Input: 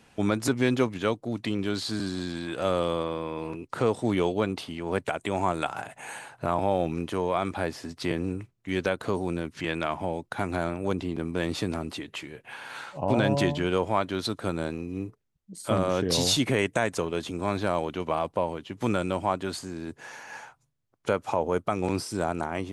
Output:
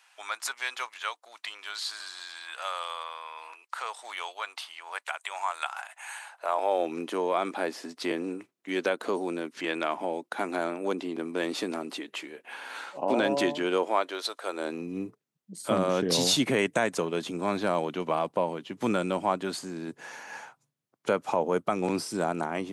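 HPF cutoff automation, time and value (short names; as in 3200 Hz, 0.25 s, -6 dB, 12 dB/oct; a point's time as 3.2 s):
HPF 24 dB/oct
6.17 s 900 Hz
6.99 s 250 Hz
13.75 s 250 Hz
14.39 s 570 Hz
14.9 s 150 Hz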